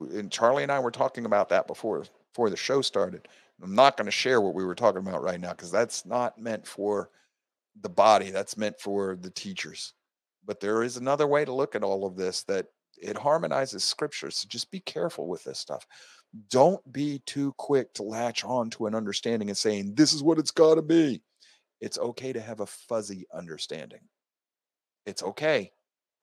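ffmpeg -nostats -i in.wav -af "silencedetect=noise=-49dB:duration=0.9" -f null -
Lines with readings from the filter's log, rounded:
silence_start: 23.98
silence_end: 25.07 | silence_duration: 1.09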